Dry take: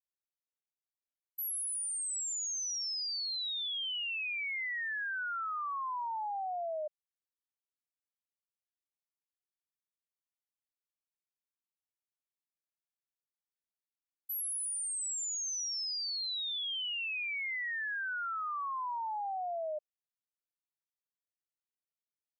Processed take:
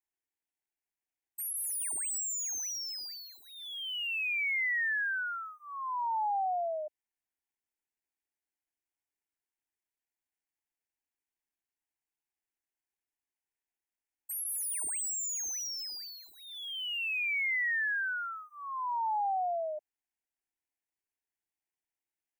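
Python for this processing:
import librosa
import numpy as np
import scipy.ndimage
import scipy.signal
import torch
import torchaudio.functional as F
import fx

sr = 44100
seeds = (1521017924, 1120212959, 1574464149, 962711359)

y = scipy.ndimage.median_filter(x, 3, mode='constant')
y = fx.fixed_phaser(y, sr, hz=810.0, stages=8)
y = y * librosa.db_to_amplitude(6.0)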